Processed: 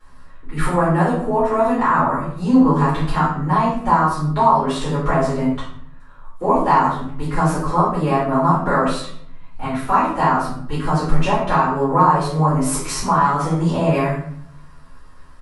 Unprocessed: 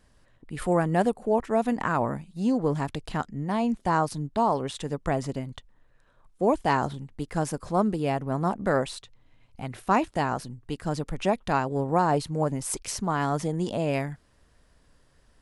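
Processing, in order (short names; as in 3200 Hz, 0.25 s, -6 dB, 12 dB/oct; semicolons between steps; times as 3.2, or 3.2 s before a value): bell 1200 Hz +12.5 dB 0.83 oct; compressor 2.5:1, threshold -25 dBFS, peak gain reduction 10.5 dB; doubler 12 ms -3 dB; reverb RT60 0.65 s, pre-delay 3 ms, DRR -12 dB; gain -6.5 dB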